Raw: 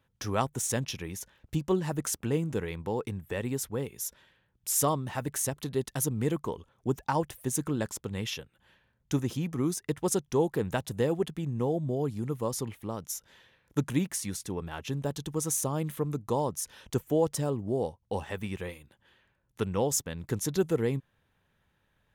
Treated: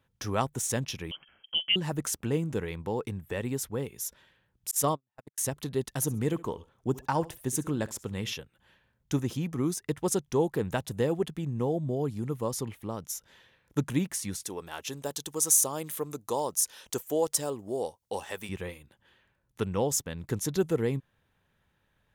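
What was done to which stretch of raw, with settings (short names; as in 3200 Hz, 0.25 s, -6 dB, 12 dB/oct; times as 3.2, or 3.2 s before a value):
1.11–1.76 inverted band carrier 3200 Hz
4.71–5.38 gate -28 dBFS, range -52 dB
5.89–8.33 feedback echo 67 ms, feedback 29%, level -19.5 dB
14.43–18.49 tone controls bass -13 dB, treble +9 dB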